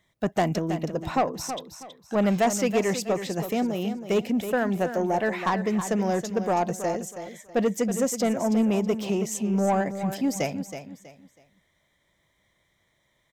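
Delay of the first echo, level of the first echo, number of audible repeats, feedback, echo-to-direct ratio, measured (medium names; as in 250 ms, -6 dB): 323 ms, -10.0 dB, 3, 29%, -9.5 dB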